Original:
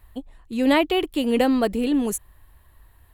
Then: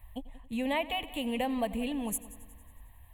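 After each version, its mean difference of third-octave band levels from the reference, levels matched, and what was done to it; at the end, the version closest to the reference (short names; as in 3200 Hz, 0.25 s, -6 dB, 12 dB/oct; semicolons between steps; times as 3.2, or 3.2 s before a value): 5.5 dB: compressor 3:1, threshold -25 dBFS, peak gain reduction 9 dB; fixed phaser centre 1400 Hz, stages 6; multi-head echo 91 ms, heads first and second, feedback 53%, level -20 dB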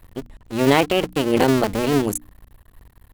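10.5 dB: cycle switcher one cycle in 2, muted; low shelf 320 Hz +2.5 dB; notches 60/120/180/240/300 Hz; gain +4.5 dB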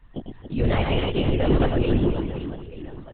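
14.0 dB: limiter -14 dBFS, peak gain reduction 7.5 dB; reverse bouncing-ball echo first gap 0.11 s, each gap 1.5×, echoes 5; LPC vocoder at 8 kHz whisper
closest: first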